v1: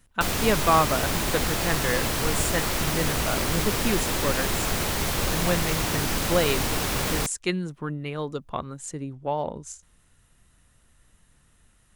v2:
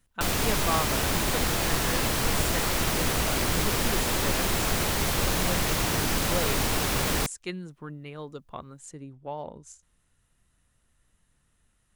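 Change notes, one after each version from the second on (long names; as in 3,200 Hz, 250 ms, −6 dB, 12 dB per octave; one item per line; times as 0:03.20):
speech −8.5 dB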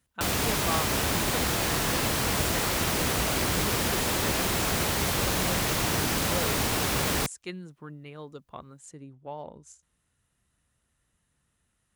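speech −3.0 dB
master: add high-pass filter 54 Hz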